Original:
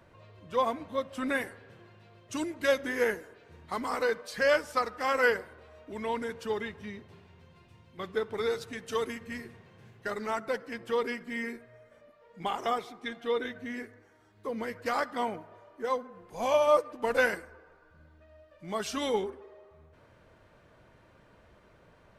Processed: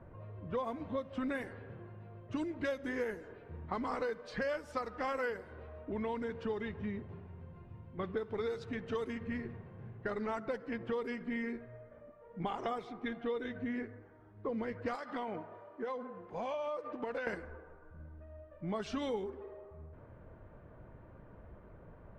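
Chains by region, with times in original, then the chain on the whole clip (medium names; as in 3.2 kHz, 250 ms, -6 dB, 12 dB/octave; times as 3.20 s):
14.95–17.27 s: high-pass 240 Hz 6 dB/octave + compression, threshold -36 dBFS + treble shelf 3.1 kHz +9.5 dB
whole clip: level-controlled noise filter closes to 1.5 kHz, open at -24.5 dBFS; tilt EQ -2 dB/octave; compression 6:1, threshold -35 dBFS; trim +1 dB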